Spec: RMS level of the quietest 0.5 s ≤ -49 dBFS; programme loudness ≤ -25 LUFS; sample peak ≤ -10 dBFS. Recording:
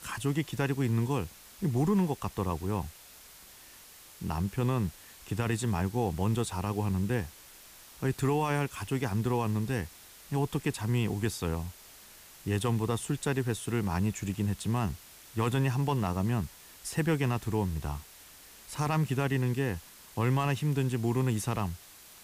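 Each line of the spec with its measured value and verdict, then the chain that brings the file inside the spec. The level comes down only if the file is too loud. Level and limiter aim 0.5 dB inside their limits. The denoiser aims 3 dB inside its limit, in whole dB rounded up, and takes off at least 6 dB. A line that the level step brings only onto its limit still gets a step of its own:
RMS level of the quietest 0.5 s -53 dBFS: OK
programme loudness -31.0 LUFS: OK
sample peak -17.0 dBFS: OK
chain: none

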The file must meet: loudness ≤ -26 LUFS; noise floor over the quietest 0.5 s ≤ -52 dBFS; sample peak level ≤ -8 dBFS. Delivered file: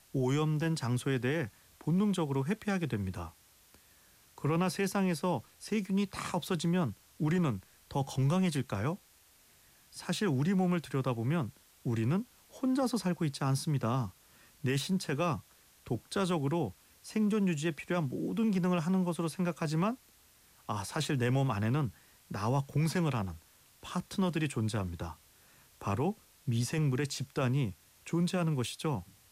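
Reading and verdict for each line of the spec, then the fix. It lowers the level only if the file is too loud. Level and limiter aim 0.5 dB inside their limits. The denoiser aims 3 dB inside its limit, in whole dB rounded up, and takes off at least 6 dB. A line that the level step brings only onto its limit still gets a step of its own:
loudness -33.0 LUFS: OK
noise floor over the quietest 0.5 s -63 dBFS: OK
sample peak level -20.5 dBFS: OK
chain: none

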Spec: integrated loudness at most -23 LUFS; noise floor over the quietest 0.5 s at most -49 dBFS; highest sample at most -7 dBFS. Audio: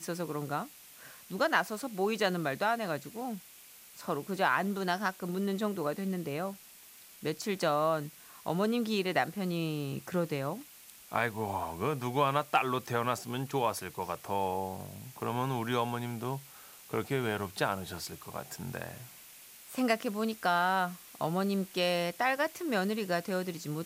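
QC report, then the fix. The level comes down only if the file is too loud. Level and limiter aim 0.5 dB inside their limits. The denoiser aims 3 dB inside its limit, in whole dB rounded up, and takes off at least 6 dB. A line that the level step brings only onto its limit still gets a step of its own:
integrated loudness -33.0 LUFS: OK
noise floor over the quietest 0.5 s -54 dBFS: OK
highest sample -12.5 dBFS: OK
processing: none

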